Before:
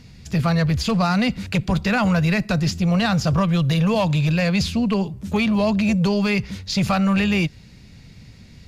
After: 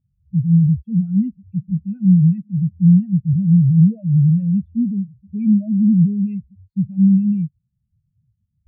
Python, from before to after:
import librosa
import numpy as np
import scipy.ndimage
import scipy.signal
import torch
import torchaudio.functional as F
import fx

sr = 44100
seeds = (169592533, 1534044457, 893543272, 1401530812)

p1 = fx.fuzz(x, sr, gain_db=49.0, gate_db=-54.0)
p2 = x + (p1 * 10.0 ** (-11.0 / 20.0))
p3 = fx.fixed_phaser(p2, sr, hz=2500.0, stages=4)
p4 = fx.spectral_expand(p3, sr, expansion=4.0)
y = p4 * 10.0 ** (4.0 / 20.0)